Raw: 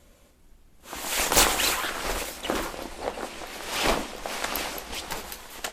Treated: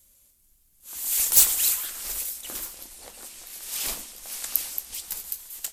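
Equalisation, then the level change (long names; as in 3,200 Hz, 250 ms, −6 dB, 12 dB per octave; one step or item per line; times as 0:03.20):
first-order pre-emphasis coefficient 0.9
low-shelf EQ 240 Hz +11 dB
high-shelf EQ 6,400 Hz +11 dB
−2.5 dB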